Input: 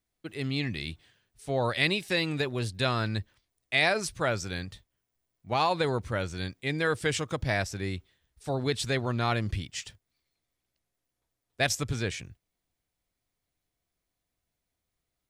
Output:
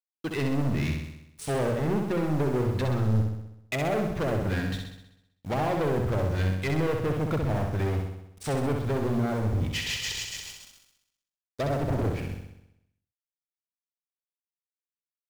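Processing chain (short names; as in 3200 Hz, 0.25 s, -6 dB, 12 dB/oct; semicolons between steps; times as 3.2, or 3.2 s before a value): 9.71–12.07 regenerating reverse delay 0.141 s, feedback 64%, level -2 dB; 10.57–12.15 spectral delete 1400–3100 Hz; treble ducked by the level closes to 440 Hz, closed at -25.5 dBFS; notches 60/120/180 Hz; sample leveller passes 5; bit-crush 8-bit; flutter echo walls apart 11 m, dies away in 0.83 s; gain -6.5 dB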